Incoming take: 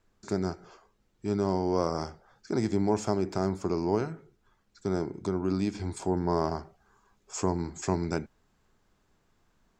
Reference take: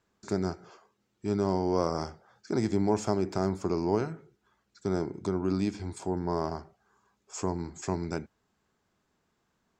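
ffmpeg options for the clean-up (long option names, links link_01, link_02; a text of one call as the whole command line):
ffmpeg -i in.wav -af "agate=range=-21dB:threshold=-62dB,asetnsamples=nb_out_samples=441:pad=0,asendcmd='5.75 volume volume -3dB',volume=0dB" out.wav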